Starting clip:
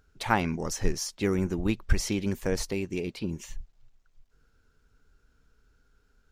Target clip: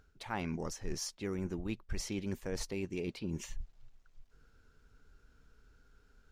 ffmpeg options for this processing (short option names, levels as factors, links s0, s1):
-af "areverse,acompressor=threshold=0.0158:ratio=6,areverse,highshelf=f=8300:g=-5.5,volume=1.19"